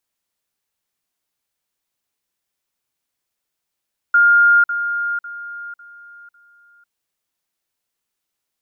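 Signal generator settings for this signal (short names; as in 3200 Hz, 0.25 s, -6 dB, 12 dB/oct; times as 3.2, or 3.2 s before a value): level ladder 1410 Hz -8.5 dBFS, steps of -10 dB, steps 5, 0.50 s 0.05 s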